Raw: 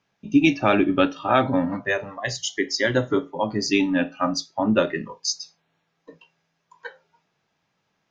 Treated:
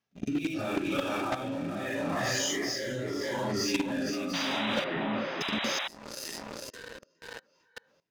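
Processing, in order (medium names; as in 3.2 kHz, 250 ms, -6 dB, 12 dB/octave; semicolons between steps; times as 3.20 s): phase randomisation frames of 200 ms; on a send: tape echo 449 ms, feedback 45%, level -5.5 dB, low-pass 5.9 kHz; on the sum: level held to a coarse grid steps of 17 dB; in parallel at -8 dB: saturation -16.5 dBFS, distortion -12 dB; on the sum: waveshaping leveller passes 3; treble shelf 6 kHz +8 dB; compression 6:1, threshold -33 dBFS, peak gain reduction 20.5 dB; rotary cabinet horn 0.75 Hz; 4.33–5.88 s: painted sound noise 530–4000 Hz -38 dBFS; 4.84–5.41 s: distance through air 480 m; trim +4.5 dB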